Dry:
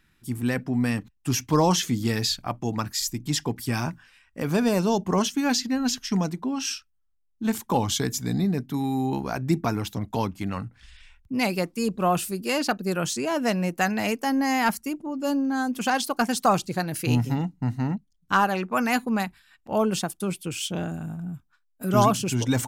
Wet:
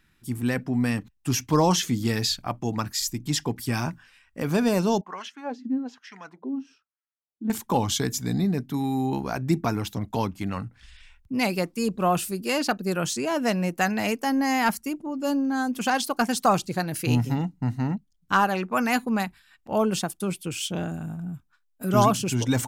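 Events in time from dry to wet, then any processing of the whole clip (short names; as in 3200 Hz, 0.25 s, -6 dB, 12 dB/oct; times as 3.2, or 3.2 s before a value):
5.01–7.5 LFO band-pass sine 1.1 Hz 250–2000 Hz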